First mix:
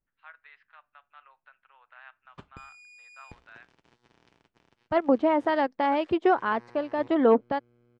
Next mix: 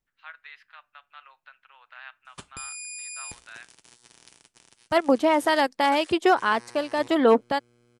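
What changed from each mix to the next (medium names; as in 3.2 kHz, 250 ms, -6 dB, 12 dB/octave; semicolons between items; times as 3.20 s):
master: remove tape spacing loss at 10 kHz 37 dB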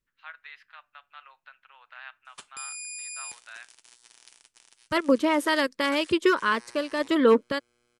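second voice: add Butterworth band-stop 760 Hz, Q 2.1; background: add high-pass 1.1 kHz 6 dB/octave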